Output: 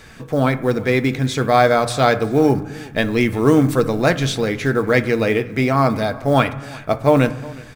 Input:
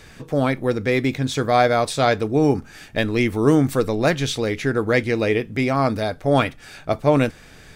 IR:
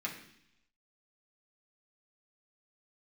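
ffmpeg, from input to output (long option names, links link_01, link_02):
-filter_complex "[0:a]acrusher=bits=8:mode=log:mix=0:aa=0.000001,aecho=1:1:365:0.075,asplit=2[link_01][link_02];[1:a]atrim=start_sample=2205,asetrate=28224,aresample=44100,lowpass=2800[link_03];[link_02][link_03]afir=irnorm=-1:irlink=0,volume=-12.5dB[link_04];[link_01][link_04]amix=inputs=2:normalize=0,volume=1.5dB"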